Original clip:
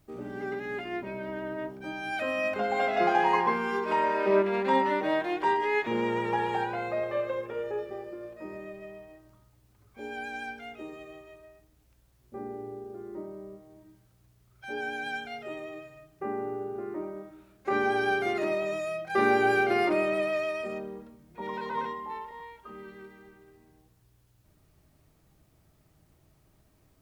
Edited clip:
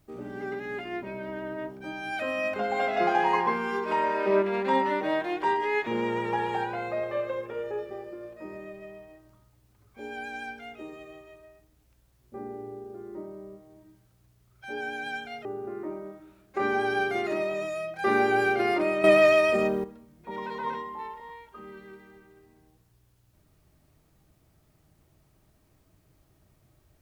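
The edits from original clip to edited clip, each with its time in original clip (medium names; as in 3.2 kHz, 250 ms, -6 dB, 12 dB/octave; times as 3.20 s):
15.45–16.56 s: delete
20.15–20.95 s: gain +11 dB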